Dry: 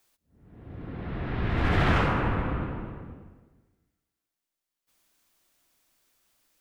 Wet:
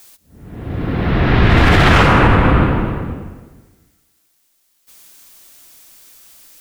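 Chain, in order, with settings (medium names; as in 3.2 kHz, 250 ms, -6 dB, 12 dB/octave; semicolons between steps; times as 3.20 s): treble shelf 3.6 kHz +8.5 dB; loudness maximiser +19.5 dB; trim -1 dB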